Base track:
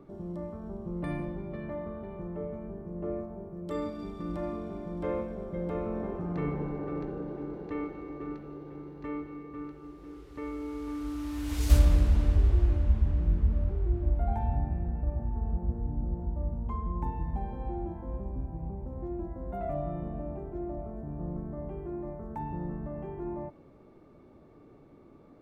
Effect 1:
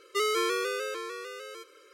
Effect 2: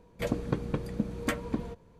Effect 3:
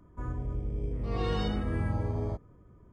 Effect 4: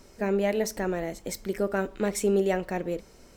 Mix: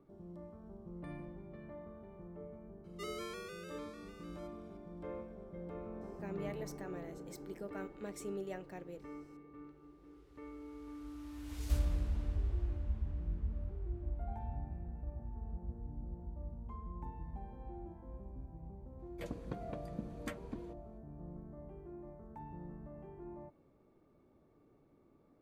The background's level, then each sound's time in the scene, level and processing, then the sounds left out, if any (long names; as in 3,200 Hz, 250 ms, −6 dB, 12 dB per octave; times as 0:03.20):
base track −12.5 dB
0:02.84: mix in 1 −17.5 dB
0:06.01: mix in 4 −18 dB
0:18.99: mix in 2 −13.5 dB
not used: 3